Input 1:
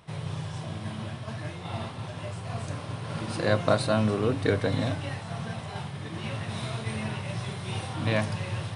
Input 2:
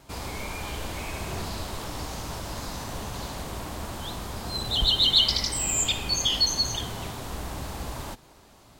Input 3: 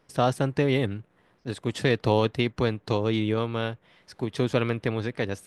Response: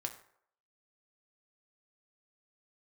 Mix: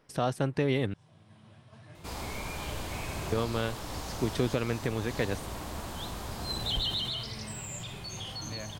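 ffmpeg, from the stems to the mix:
-filter_complex "[0:a]acompressor=threshold=-27dB:ratio=6,adelay=450,volume=-9.5dB[link_01];[1:a]alimiter=limit=-19.5dB:level=0:latency=1:release=28,adelay=1950,volume=-3.5dB,afade=type=out:start_time=6.86:duration=0.47:silence=0.298538[link_02];[2:a]volume=-0.5dB,asplit=3[link_03][link_04][link_05];[link_03]atrim=end=0.94,asetpts=PTS-STARTPTS,afade=type=out:start_time=0.936:duration=0.004:curve=hsin[link_06];[link_04]atrim=start=0.94:end=3.32,asetpts=PTS-STARTPTS,volume=0[link_07];[link_05]atrim=start=3.32,asetpts=PTS-STARTPTS,afade=type=in:duration=0.004:curve=hsin[link_08];[link_06][link_07][link_08]concat=n=3:v=0:a=1,asplit=2[link_09][link_10];[link_10]apad=whole_len=406031[link_11];[link_01][link_11]sidechaincompress=threshold=-34dB:ratio=8:attack=8.2:release=1490[link_12];[link_12][link_02][link_09]amix=inputs=3:normalize=0,alimiter=limit=-16dB:level=0:latency=1:release=373"

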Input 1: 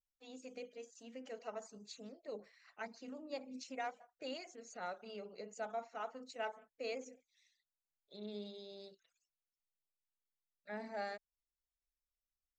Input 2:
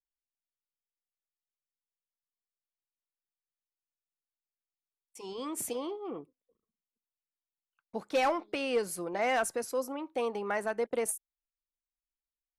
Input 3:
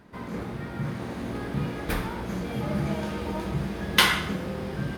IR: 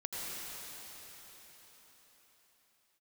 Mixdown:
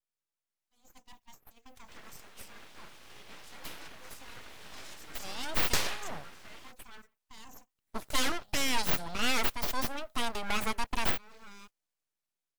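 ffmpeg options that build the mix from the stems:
-filter_complex "[0:a]bandreject=frequency=60:width_type=h:width=6,bandreject=frequency=120:width_type=h:width=6,bandreject=frequency=180:width_type=h:width=6,bandreject=frequency=240:width_type=h:width=6,alimiter=level_in=16dB:limit=-24dB:level=0:latency=1:release=65,volume=-16dB,adelay=500,volume=-4dB[link_01];[1:a]adynamicequalizer=threshold=0.00282:dfrequency=3700:dqfactor=1:tfrequency=3700:tqfactor=1:attack=5:release=100:ratio=0.375:range=3:mode=boostabove:tftype=bell,volume=-1.5dB[link_02];[2:a]highpass=1000,adelay=1750,volume=-11dB[link_03];[link_01][link_02]amix=inputs=2:normalize=0,aemphasis=mode=production:type=75fm,alimiter=limit=-18.5dB:level=0:latency=1:release=367,volume=0dB[link_04];[link_03][link_04]amix=inputs=2:normalize=0,aeval=exprs='abs(val(0))':channel_layout=same,dynaudnorm=framelen=190:gausssize=11:maxgain=4dB,agate=range=-14dB:threshold=-52dB:ratio=16:detection=peak"

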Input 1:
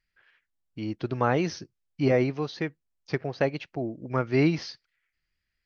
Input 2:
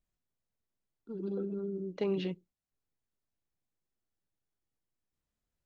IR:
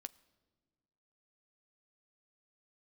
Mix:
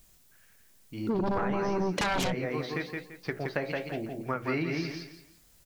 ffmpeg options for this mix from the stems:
-filter_complex "[0:a]bandreject=frequency=60.86:width_type=h:width=4,bandreject=frequency=121.72:width_type=h:width=4,bandreject=frequency=182.58:width_type=h:width=4,bandreject=frequency=243.44:width_type=h:width=4,bandreject=frequency=304.3:width_type=h:width=4,bandreject=frequency=365.16:width_type=h:width=4,bandreject=frequency=426.02:width_type=h:width=4,bandreject=frequency=486.88:width_type=h:width=4,bandreject=frequency=547.74:width_type=h:width=4,bandreject=frequency=608.6:width_type=h:width=4,bandreject=frequency=669.46:width_type=h:width=4,bandreject=frequency=730.32:width_type=h:width=4,bandreject=frequency=791.18:width_type=h:width=4,bandreject=frequency=852.04:width_type=h:width=4,adynamicequalizer=threshold=0.00794:dfrequency=1700:dqfactor=0.82:tfrequency=1700:tqfactor=0.82:attack=5:release=100:ratio=0.375:range=3.5:mode=boostabove:tftype=bell,flanger=delay=8.6:depth=9.5:regen=-59:speed=1:shape=sinusoidal,adelay=150,volume=0dB,asplit=2[link_01][link_02];[link_02]volume=-4.5dB[link_03];[1:a]highshelf=frequency=4100:gain=11.5,aeval=exprs='0.1*sin(PI/2*6.31*val(0)/0.1)':channel_layout=same,volume=-0.5dB,asplit=2[link_04][link_05];[link_05]volume=-3.5dB[link_06];[2:a]atrim=start_sample=2205[link_07];[link_06][link_07]afir=irnorm=-1:irlink=0[link_08];[link_03]aecho=0:1:170|340|510|680:1|0.28|0.0784|0.022[link_09];[link_01][link_04][link_08][link_09]amix=inputs=4:normalize=0,acompressor=threshold=-26dB:ratio=12"

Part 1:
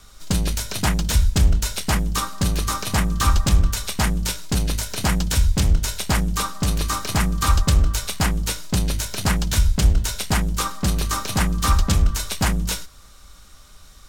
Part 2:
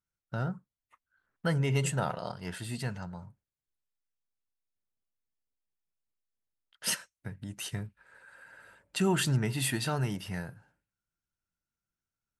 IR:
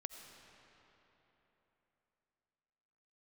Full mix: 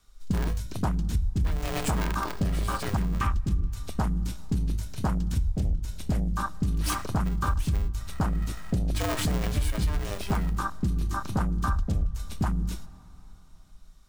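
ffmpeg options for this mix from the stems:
-filter_complex "[0:a]afwtdn=0.0708,volume=-2dB,asplit=2[link_01][link_02];[link_02]volume=-12dB[link_03];[1:a]aecho=1:1:3.1:0.63,aeval=exprs='clip(val(0),-1,0.01)':channel_layout=same,aeval=exprs='val(0)*sgn(sin(2*PI*300*n/s))':channel_layout=same,volume=3dB[link_04];[2:a]atrim=start_sample=2205[link_05];[link_03][link_05]afir=irnorm=-1:irlink=0[link_06];[link_01][link_04][link_06]amix=inputs=3:normalize=0,acompressor=threshold=-23dB:ratio=5"

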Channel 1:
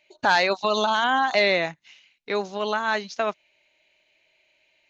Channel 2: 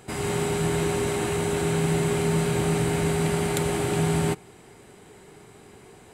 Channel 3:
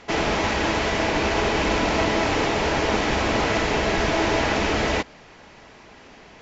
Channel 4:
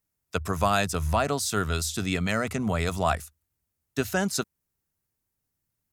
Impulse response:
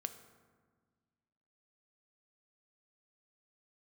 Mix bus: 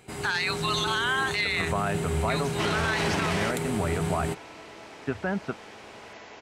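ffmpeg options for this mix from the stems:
-filter_complex "[0:a]highpass=frequency=1200:width=0.5412,highpass=frequency=1200:width=1.3066,volume=2.5dB,asplit=2[link_01][link_02];[1:a]volume=-6dB[link_03];[2:a]highpass=frequency=400:poles=1,adelay=2500,volume=-3.5dB,asplit=2[link_04][link_05];[link_05]volume=-20dB[link_06];[3:a]lowpass=frequency=2300:width=0.5412,lowpass=frequency=2300:width=1.3066,adelay=1100,volume=-2dB[link_07];[link_02]apad=whole_len=393195[link_08];[link_04][link_08]sidechaingate=range=-33dB:threshold=-54dB:ratio=16:detection=peak[link_09];[link_06]aecho=0:1:99|198|297|396|495|594|693|792:1|0.54|0.292|0.157|0.085|0.0459|0.0248|0.0134[link_10];[link_01][link_03][link_09][link_07][link_10]amix=inputs=5:normalize=0,alimiter=limit=-17dB:level=0:latency=1:release=22"

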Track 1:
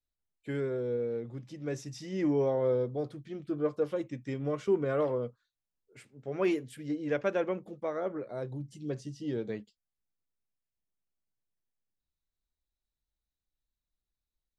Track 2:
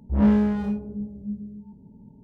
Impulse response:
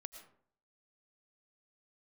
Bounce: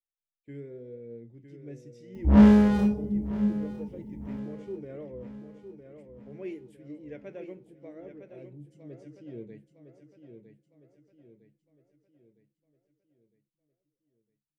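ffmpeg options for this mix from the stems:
-filter_complex "[0:a]agate=range=-9dB:threshold=-51dB:ratio=16:detection=peak,firequalizer=gain_entry='entry(330,0);entry(1200,-19);entry(2000,-5);entry(4000,-16)':delay=0.05:min_phase=1,flanger=delay=8.4:depth=5.6:regen=73:speed=0.86:shape=sinusoidal,volume=-4.5dB,asplit=2[link_01][link_02];[link_02]volume=-8.5dB[link_03];[1:a]adelay=2150,volume=3dB,asplit=2[link_04][link_05];[link_05]volume=-18dB[link_06];[link_03][link_06]amix=inputs=2:normalize=0,aecho=0:1:958|1916|2874|3832|4790|5748:1|0.46|0.212|0.0973|0.0448|0.0206[link_07];[link_01][link_04][link_07]amix=inputs=3:normalize=0,highshelf=frequency=3700:gain=9"

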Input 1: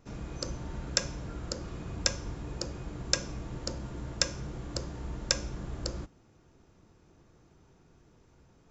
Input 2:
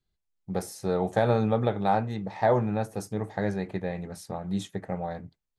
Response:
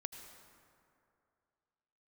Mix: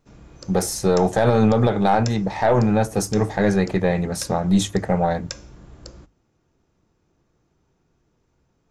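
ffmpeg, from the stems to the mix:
-filter_complex "[0:a]volume=-5.5dB[link_01];[1:a]equalizer=frequency=6500:width_type=o:width=0.8:gain=5,dynaudnorm=framelen=160:gausssize=5:maxgain=11dB,aeval=exprs='0.794*(cos(1*acos(clip(val(0)/0.794,-1,1)))-cos(1*PI/2))+0.0708*(cos(4*acos(clip(val(0)/0.794,-1,1)))-cos(4*PI/2))':channel_layout=same,volume=2.5dB[link_02];[link_01][link_02]amix=inputs=2:normalize=0,bandreject=frequency=50:width_type=h:width=6,bandreject=frequency=100:width_type=h:width=6,alimiter=limit=-8dB:level=0:latency=1:release=50"

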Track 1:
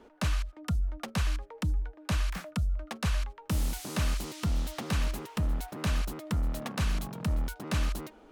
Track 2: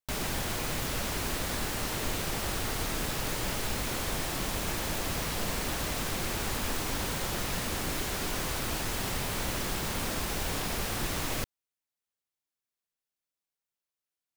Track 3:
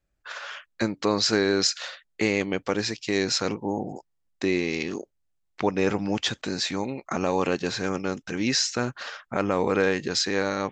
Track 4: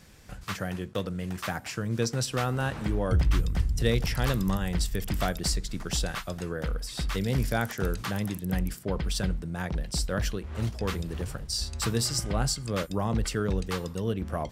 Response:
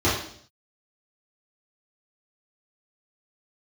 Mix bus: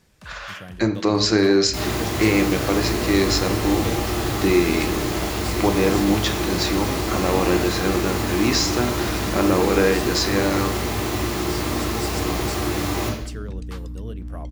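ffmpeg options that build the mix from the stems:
-filter_complex "[0:a]volume=-15dB[link_01];[1:a]highpass=150,highshelf=frequency=9500:gain=5.5,aeval=exprs='val(0)+0.00398*(sin(2*PI*60*n/s)+sin(2*PI*2*60*n/s)/2+sin(2*PI*3*60*n/s)/3+sin(2*PI*4*60*n/s)/4+sin(2*PI*5*60*n/s)/5)':channel_layout=same,adelay=1650,volume=-6dB,asplit=2[link_02][link_03];[link_03]volume=-4dB[link_04];[2:a]volume=1.5dB,asplit=2[link_05][link_06];[link_06]volume=-22.5dB[link_07];[3:a]volume=-7dB[link_08];[4:a]atrim=start_sample=2205[link_09];[link_04][link_07]amix=inputs=2:normalize=0[link_10];[link_10][link_09]afir=irnorm=-1:irlink=0[link_11];[link_01][link_02][link_05][link_08][link_11]amix=inputs=5:normalize=0"

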